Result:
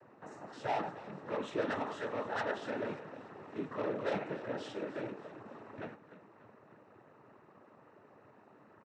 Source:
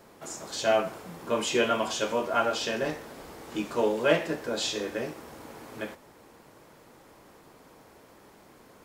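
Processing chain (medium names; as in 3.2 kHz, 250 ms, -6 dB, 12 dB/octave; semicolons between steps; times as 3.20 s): rattle on loud lows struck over -40 dBFS, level -25 dBFS; Savitzky-Golay filter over 41 samples; saturation -26 dBFS, distortion -8 dB; frequency-shifting echo 292 ms, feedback 53%, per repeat -38 Hz, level -15 dB; noise-vocoded speech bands 12; trim -4.5 dB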